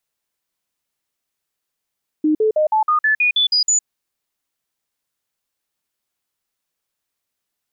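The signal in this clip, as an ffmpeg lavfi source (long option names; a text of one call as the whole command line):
ffmpeg -f lavfi -i "aevalsrc='0.237*clip(min(mod(t,0.16),0.11-mod(t,0.16))/0.005,0,1)*sin(2*PI*307*pow(2,floor(t/0.16)/2)*mod(t,0.16))':duration=1.6:sample_rate=44100" out.wav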